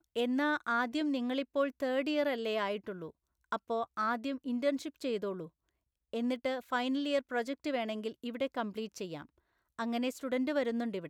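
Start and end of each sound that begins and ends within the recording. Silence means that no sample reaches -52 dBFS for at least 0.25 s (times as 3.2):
3.52–5.48
6.13–9.25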